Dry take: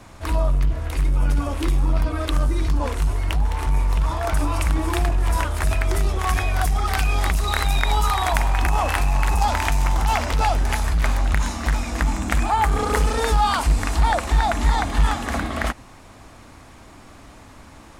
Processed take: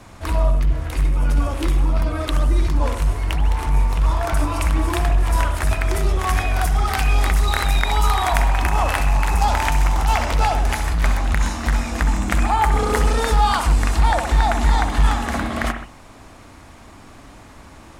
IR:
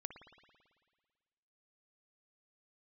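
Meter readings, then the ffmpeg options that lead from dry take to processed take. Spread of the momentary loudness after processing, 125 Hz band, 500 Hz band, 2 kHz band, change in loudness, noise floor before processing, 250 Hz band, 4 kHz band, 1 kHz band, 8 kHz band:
4 LU, +2.0 dB, +1.5 dB, +1.5 dB, +2.0 dB, -45 dBFS, +1.5 dB, +1.0 dB, +1.5 dB, +1.0 dB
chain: -filter_complex "[1:a]atrim=start_sample=2205,afade=t=out:st=0.21:d=0.01,atrim=end_sample=9702,asetrate=40131,aresample=44100[a];[0:a][a]afir=irnorm=-1:irlink=0,volume=5.5dB"

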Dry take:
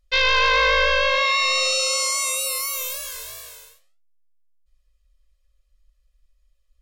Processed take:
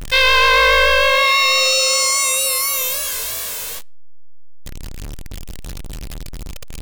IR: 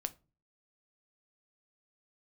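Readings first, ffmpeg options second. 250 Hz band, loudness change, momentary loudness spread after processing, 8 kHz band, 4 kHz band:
n/a, +5.0 dB, 22 LU, +7.0 dB, +6.0 dB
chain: -af "aeval=exprs='val(0)+0.5*0.0501*sgn(val(0))':c=same,volume=4dB"

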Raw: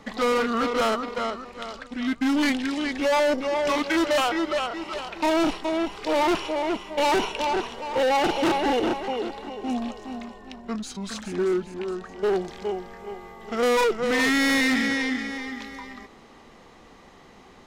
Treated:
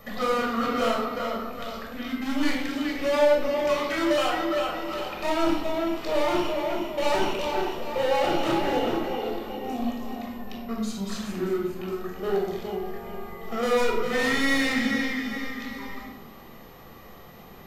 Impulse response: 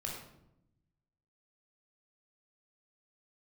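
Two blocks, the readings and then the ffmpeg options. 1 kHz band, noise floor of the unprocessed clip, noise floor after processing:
-2.5 dB, -50 dBFS, -46 dBFS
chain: -filter_complex "[0:a]asplit=2[a][b];[b]acompressor=threshold=-35dB:ratio=6,volume=1dB[c];[a][c]amix=inputs=2:normalize=0,aeval=exprs='val(0)+0.00398*sin(2*PI*13000*n/s)':c=same[d];[1:a]atrim=start_sample=2205[e];[d][e]afir=irnorm=-1:irlink=0,volume=-5dB"

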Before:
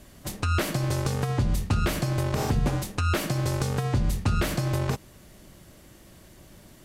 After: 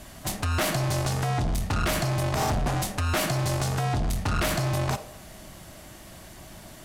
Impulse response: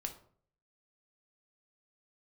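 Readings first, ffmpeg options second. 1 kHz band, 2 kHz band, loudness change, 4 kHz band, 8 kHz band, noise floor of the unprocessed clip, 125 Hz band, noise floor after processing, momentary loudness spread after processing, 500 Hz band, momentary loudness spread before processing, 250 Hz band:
+3.5 dB, +2.5 dB, 0.0 dB, +3.0 dB, +4.0 dB, -52 dBFS, -1.0 dB, -46 dBFS, 19 LU, +1.0 dB, 2 LU, -1.5 dB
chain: -filter_complex "[0:a]asoftclip=type=tanh:threshold=-27.5dB,asplit=2[a][b];[b]highpass=f=630:t=q:w=3.4[c];[1:a]atrim=start_sample=2205,asetrate=24255,aresample=44100[d];[c][d]afir=irnorm=-1:irlink=0,volume=-8.5dB[e];[a][e]amix=inputs=2:normalize=0,volume=4.5dB"

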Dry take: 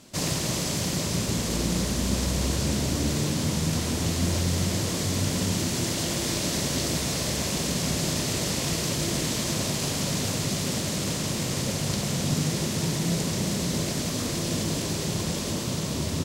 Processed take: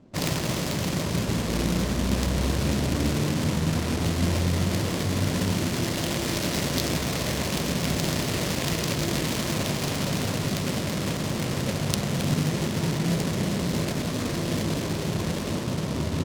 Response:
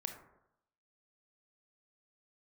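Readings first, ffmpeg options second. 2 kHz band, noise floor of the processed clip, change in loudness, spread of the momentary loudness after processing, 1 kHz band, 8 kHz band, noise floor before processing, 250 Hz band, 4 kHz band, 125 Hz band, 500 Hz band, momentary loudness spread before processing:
+2.0 dB, -30 dBFS, 0.0 dB, 3 LU, +2.5 dB, -5.0 dB, -30 dBFS, +1.5 dB, -2.0 dB, +1.5 dB, +2.0 dB, 2 LU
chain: -af "adynamicsmooth=sensitivity=3.5:basefreq=560,crystalizer=i=5:c=0,volume=1.5dB"

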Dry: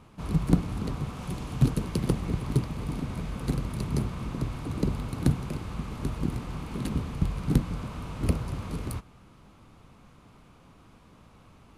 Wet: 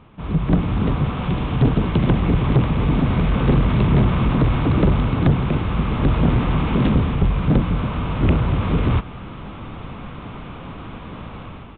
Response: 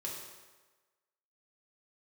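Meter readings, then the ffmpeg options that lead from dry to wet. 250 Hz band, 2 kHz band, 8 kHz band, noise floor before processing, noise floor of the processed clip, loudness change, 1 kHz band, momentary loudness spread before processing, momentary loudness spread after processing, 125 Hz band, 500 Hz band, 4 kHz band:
+11.0 dB, +14.5 dB, under -35 dB, -55 dBFS, -36 dBFS, +11.5 dB, +14.5 dB, 9 LU, 17 LU, +11.5 dB, +12.5 dB, +10.5 dB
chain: -af "dynaudnorm=f=210:g=5:m=15.5dB,asoftclip=type=tanh:threshold=-15.5dB,aresample=8000,aresample=44100,volume=5.5dB"

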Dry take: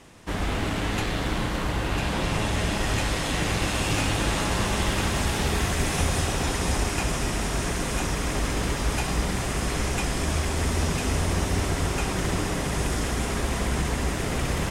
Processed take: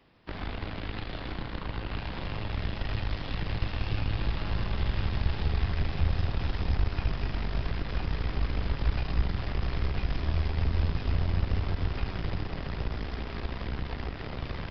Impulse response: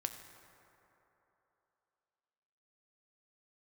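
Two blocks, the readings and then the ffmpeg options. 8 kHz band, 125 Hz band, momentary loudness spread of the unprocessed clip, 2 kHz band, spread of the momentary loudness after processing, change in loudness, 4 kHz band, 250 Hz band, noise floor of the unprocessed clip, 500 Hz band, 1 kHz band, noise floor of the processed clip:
under -35 dB, -3.0 dB, 3 LU, -11.0 dB, 7 LU, -6.5 dB, -11.0 dB, -9.5 dB, -29 dBFS, -11.0 dB, -11.0 dB, -39 dBFS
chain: -filter_complex "[0:a]dynaudnorm=f=580:g=11:m=5dB,asoftclip=type=tanh:threshold=-15.5dB,aeval=exprs='0.168*(cos(1*acos(clip(val(0)/0.168,-1,1)))-cos(1*PI/2))+0.0473*(cos(2*acos(clip(val(0)/0.168,-1,1)))-cos(2*PI/2))+0.0422*(cos(3*acos(clip(val(0)/0.168,-1,1)))-cos(3*PI/2))':c=same,acrossover=split=130[a][b];[b]acompressor=threshold=-35dB:ratio=10[c];[a][c]amix=inputs=2:normalize=0,aresample=11025,aresample=44100"

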